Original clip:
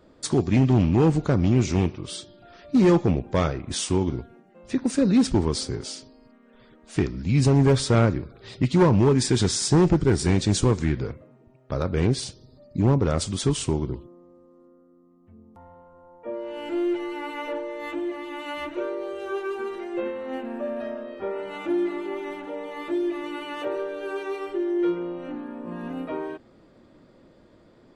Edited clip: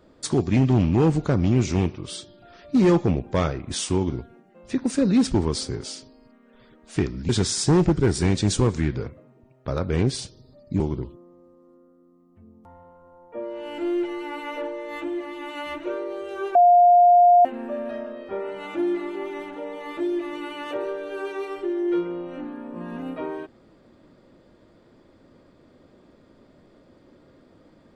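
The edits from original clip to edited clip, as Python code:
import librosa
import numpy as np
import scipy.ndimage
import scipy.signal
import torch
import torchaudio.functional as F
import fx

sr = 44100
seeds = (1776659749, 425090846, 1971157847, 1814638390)

y = fx.edit(x, sr, fx.cut(start_s=7.29, length_s=2.04),
    fx.cut(start_s=12.84, length_s=0.87),
    fx.bleep(start_s=19.46, length_s=0.9, hz=706.0, db=-10.5), tone=tone)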